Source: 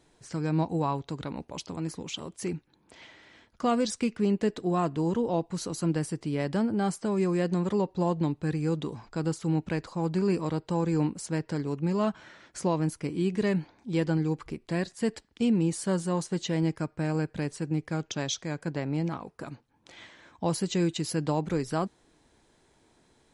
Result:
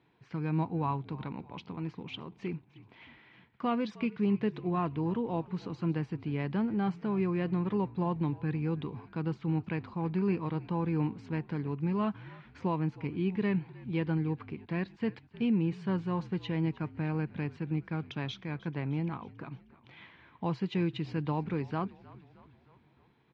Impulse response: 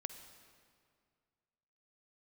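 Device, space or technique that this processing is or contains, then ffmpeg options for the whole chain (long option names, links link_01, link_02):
frequency-shifting delay pedal into a guitar cabinet: -filter_complex "[0:a]asplit=6[link_01][link_02][link_03][link_04][link_05][link_06];[link_02]adelay=310,afreqshift=-58,volume=-20dB[link_07];[link_03]adelay=620,afreqshift=-116,volume=-24.6dB[link_08];[link_04]adelay=930,afreqshift=-174,volume=-29.2dB[link_09];[link_05]adelay=1240,afreqshift=-232,volume=-33.7dB[link_10];[link_06]adelay=1550,afreqshift=-290,volume=-38.3dB[link_11];[link_01][link_07][link_08][link_09][link_10][link_11]amix=inputs=6:normalize=0,highpass=87,equalizer=frequency=130:width_type=q:width=4:gain=7,equalizer=frequency=200:width_type=q:width=4:gain=3,equalizer=frequency=580:width_type=q:width=4:gain=-7,equalizer=frequency=1000:width_type=q:width=4:gain=4,equalizer=frequency=2400:width_type=q:width=4:gain=5,lowpass=frequency=3400:width=0.5412,lowpass=frequency=3400:width=1.3066,volume=-5dB"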